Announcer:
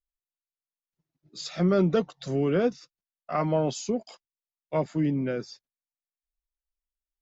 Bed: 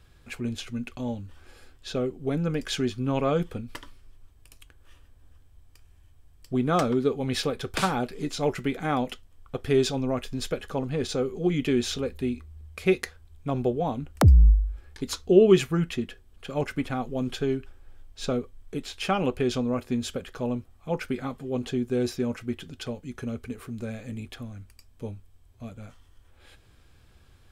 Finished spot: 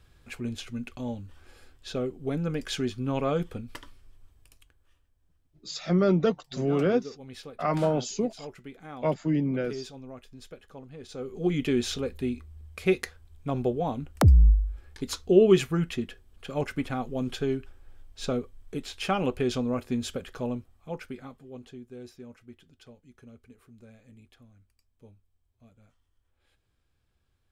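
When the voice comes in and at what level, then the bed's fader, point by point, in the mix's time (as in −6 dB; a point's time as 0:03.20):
4.30 s, 0.0 dB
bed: 0:04.35 −2.5 dB
0:05.06 −16 dB
0:11.03 −16 dB
0:11.44 −1.5 dB
0:20.39 −1.5 dB
0:21.87 −17.5 dB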